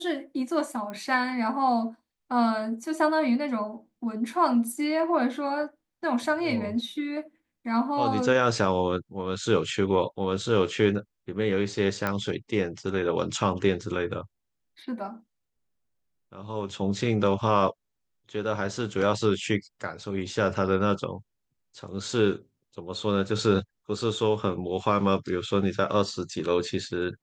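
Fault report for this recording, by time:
0:00.90: click −24 dBFS
0:12.07: click −14 dBFS

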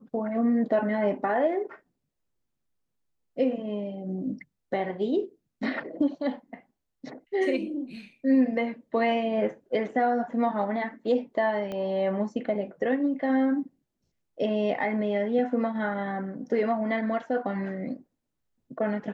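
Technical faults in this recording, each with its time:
0:11.72: click −22 dBFS

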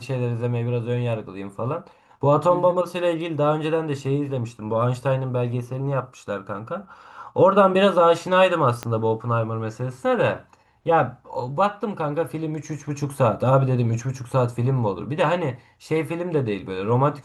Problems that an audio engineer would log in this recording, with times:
0:08.83: click −13 dBFS

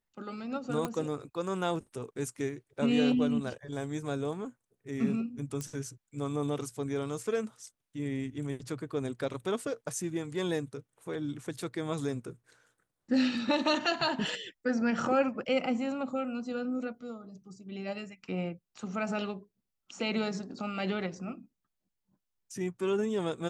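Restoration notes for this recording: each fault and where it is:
0:00.85: click −19 dBFS
0:05.61: click −23 dBFS

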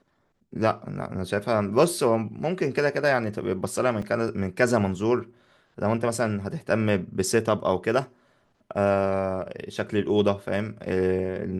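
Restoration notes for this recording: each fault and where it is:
0:04.02: drop-out 4.2 ms

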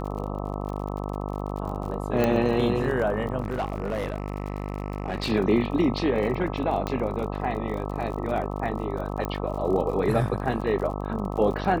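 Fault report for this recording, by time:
mains buzz 50 Hz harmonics 26 −31 dBFS
surface crackle 47 per second −34 dBFS
0:02.24: click −11 dBFS
0:03.42–0:05.32: clipping −23 dBFS
0:06.87: click −15 dBFS
0:09.25: click −16 dBFS

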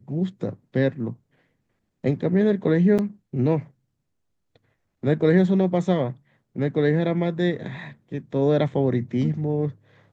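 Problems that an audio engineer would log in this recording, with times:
0:02.98–0:02.99: drop-out 7.6 ms

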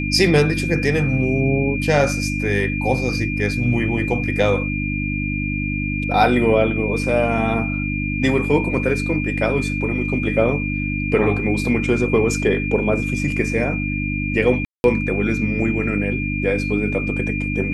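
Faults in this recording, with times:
mains hum 50 Hz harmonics 6 −24 dBFS
whistle 2,400 Hz −26 dBFS
0:14.65–0:14.84: drop-out 191 ms

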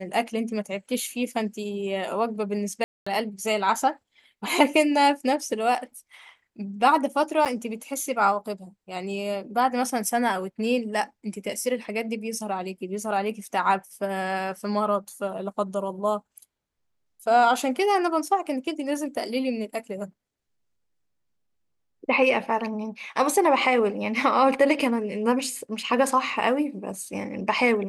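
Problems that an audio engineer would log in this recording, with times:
0:02.84–0:03.06: drop-out 225 ms
0:07.45–0:07.46: drop-out 8.1 ms

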